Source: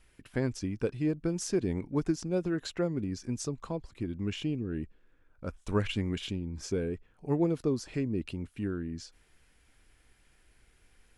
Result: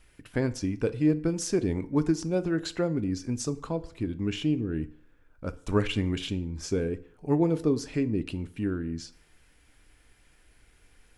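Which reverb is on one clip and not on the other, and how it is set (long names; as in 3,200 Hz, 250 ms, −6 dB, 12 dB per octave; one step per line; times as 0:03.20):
feedback delay network reverb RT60 0.59 s, low-frequency decay 0.85×, high-frequency decay 0.7×, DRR 12 dB
level +3.5 dB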